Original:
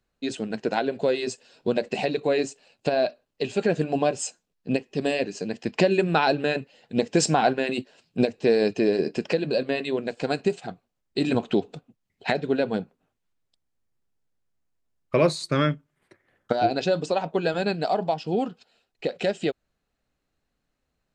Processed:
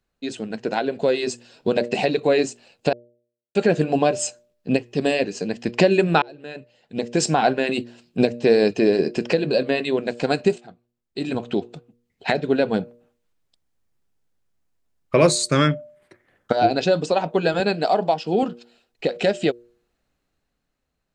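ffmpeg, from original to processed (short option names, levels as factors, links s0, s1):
-filter_complex "[0:a]asettb=1/sr,asplit=3[s0][s1][s2];[s0]atrim=end=15.214[s3];[s1]atrim=start=15.21:end=15.68,asetpts=PTS-STARTPTS,afade=t=in:d=0.004:c=qsin,afade=t=out:st=0.466:d=0.004:c=qsin,equalizer=f=7700:t=o:w=0.92:g=12.5[s4];[s2]atrim=start=15.676[s5];[s3][s4]acrossfade=d=0.004:c1=hsin:c2=qsin[s6];[s6][s5]acrossfade=d=0.004:c1=qsin:c2=hsin,asettb=1/sr,asplit=3[s7][s8][s9];[s7]atrim=end=17.604[s10];[s8]atrim=start=17.6:end=18.43,asetpts=PTS-STARTPTS,afade=t=in:d=0.004:c=qsin,afade=t=out:st=0.826:d=0.004:c=qsin,highpass=180[s11];[s9]atrim=start=18.426[s12];[s10][s11]acrossfade=d=0.004:c1=hsin:c2=qsin[s13];[s13][s12]acrossfade=d=0.004:c1=qsin:c2=hsin,asplit=5[s14][s15][s16][s17][s18];[s14]atrim=end=2.93,asetpts=PTS-STARTPTS,afade=t=out:st=2.926:d=0.004:c=hsin[s19];[s15]atrim=start=2.93:end=3.55,asetpts=PTS-STARTPTS,volume=0[s20];[s16]atrim=start=3.55:end=6.22,asetpts=PTS-STARTPTS,afade=t=in:d=0.004:c=hsin,afade=t=out:st=2.666:d=0.004:c=hsin[s21];[s17]atrim=start=6.22:end=10.58,asetpts=PTS-STARTPTS,afade=t=in:d=1.53,afade=t=out:st=4.356:d=0.004:c=hsin:silence=0.158489[s22];[s18]atrim=start=10.58,asetpts=PTS-STARTPTS,afade=t=in:d=2.23:silence=0.158489[s23];[s19][s20][s21][s22][s23]concat=n=5:v=0:a=1,dynaudnorm=f=150:g=13:m=1.88,bandreject=f=119.4:t=h:w=4,bandreject=f=238.8:t=h:w=4,bandreject=f=358.2:t=h:w=4,bandreject=f=477.6:t=h:w=4,bandreject=f=597:t=h:w=4"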